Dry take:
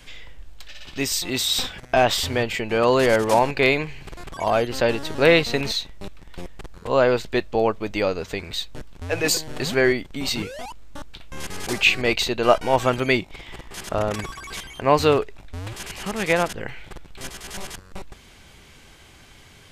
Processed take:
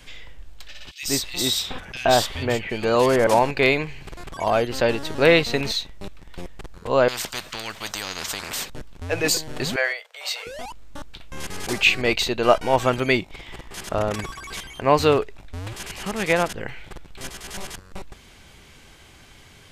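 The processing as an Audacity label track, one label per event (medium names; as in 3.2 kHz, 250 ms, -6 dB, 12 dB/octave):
0.910000	3.270000	bands offset in time highs, lows 120 ms, split 2.4 kHz
7.080000	8.700000	spectrum-flattening compressor 10:1
9.760000	10.470000	rippled Chebyshev high-pass 460 Hz, ripple 3 dB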